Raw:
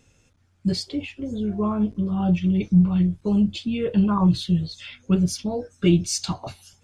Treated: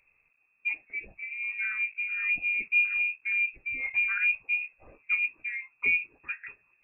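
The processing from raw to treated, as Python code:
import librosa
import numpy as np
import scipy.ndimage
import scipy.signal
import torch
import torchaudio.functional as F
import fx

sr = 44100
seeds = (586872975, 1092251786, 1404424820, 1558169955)

y = fx.freq_invert(x, sr, carrier_hz=2600)
y = y * librosa.db_to_amplitude(-8.5)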